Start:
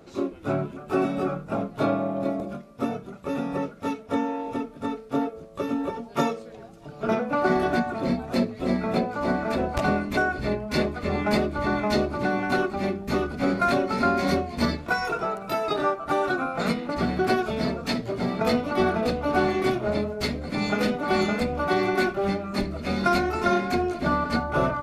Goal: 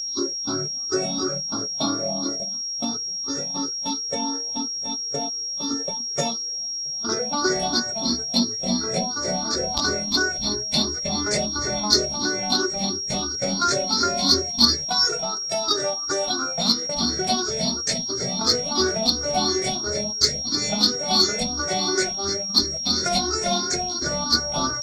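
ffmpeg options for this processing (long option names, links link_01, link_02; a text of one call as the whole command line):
ffmpeg -i in.wav -filter_complex "[0:a]afftfilt=real='re*pow(10,17/40*sin(2*PI*(0.5*log(max(b,1)*sr/1024/100)/log(2)-(2.9)*(pts-256)/sr)))':imag='im*pow(10,17/40*sin(2*PI*(0.5*log(max(b,1)*sr/1024/100)/log(2)-(2.9)*(pts-256)/sr)))':win_size=1024:overlap=0.75,acrossover=split=5600[link_01][link_02];[link_01]aexciter=amount=13.7:drive=8.5:freq=4100[link_03];[link_02]acompressor=threshold=-59dB:ratio=6[link_04];[link_03][link_04]amix=inputs=2:normalize=0,agate=range=-12dB:threshold=-26dB:ratio=16:detection=peak,aeval=exprs='val(0)+0.0891*sin(2*PI*5600*n/s)':channel_layout=same,volume=-5.5dB" out.wav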